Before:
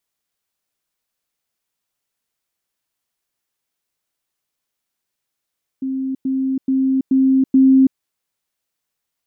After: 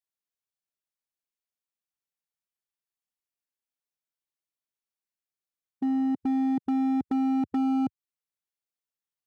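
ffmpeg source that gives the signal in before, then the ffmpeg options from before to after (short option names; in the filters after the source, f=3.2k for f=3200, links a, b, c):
-f lavfi -i "aevalsrc='pow(10,(-19.5+3*floor(t/0.43))/20)*sin(2*PI*265*t)*clip(min(mod(t,0.43),0.33-mod(t,0.43))/0.005,0,1)':d=2.15:s=44100"
-filter_complex "[0:a]afwtdn=0.0282,acrossover=split=140[a][b];[b]acompressor=threshold=-20dB:ratio=16[c];[a][c]amix=inputs=2:normalize=0,volume=23.5dB,asoftclip=hard,volume=-23.5dB"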